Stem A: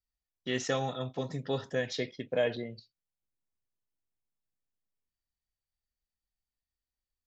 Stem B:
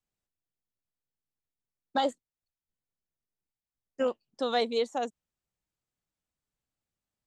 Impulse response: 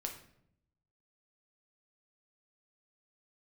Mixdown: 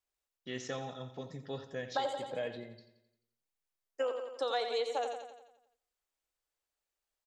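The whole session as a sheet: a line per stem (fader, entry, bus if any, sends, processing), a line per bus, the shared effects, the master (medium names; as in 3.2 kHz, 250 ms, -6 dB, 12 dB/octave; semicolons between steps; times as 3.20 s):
-8.5 dB, 0.00 s, no send, echo send -12.5 dB, none
-2.0 dB, 0.00 s, send -8 dB, echo send -6.5 dB, high-pass 390 Hz 24 dB/octave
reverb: on, RT60 0.70 s, pre-delay 6 ms
echo: feedback delay 87 ms, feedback 52%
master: compression 6:1, threshold -30 dBFS, peak gain reduction 8 dB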